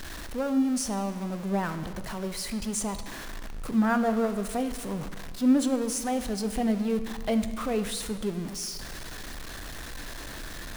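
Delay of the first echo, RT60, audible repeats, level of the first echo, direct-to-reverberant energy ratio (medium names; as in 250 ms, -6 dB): no echo, 1.6 s, no echo, no echo, 9.5 dB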